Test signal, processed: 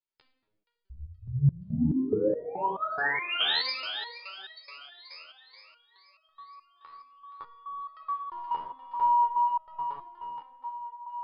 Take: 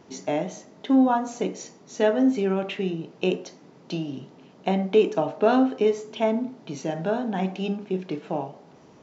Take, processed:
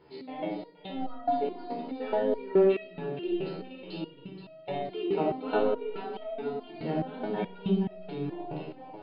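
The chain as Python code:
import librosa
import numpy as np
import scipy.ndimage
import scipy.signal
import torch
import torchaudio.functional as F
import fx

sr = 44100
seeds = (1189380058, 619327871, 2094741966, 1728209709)

p1 = fx.peak_eq(x, sr, hz=94.0, db=-14.0, octaves=0.25)
p2 = 10.0 ** (-17.5 / 20.0) * np.tanh(p1 / 10.0 ** (-17.5 / 20.0))
p3 = p1 + (p2 * 10.0 ** (-5.0 / 20.0))
p4 = fx.brickwall_lowpass(p3, sr, high_hz=5100.0)
p5 = p4 + fx.echo_split(p4, sr, split_hz=510.0, low_ms=279, high_ms=473, feedback_pct=52, wet_db=-8.5, dry=0)
p6 = fx.room_shoebox(p5, sr, seeds[0], volume_m3=3200.0, walls='furnished', distance_m=4.4)
p7 = fx.resonator_held(p6, sr, hz=4.7, low_hz=78.0, high_hz=640.0)
y = p7 * 10.0 ** (-2.5 / 20.0)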